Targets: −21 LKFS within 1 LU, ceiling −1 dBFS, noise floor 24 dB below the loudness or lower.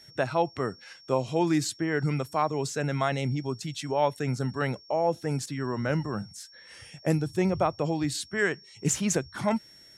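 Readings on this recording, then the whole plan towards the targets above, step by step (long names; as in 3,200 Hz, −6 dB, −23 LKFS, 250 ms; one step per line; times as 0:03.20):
interfering tone 5,500 Hz; level of the tone −51 dBFS; integrated loudness −29.0 LKFS; sample peak −11.5 dBFS; target loudness −21.0 LKFS
→ notch filter 5,500 Hz, Q 30
level +8 dB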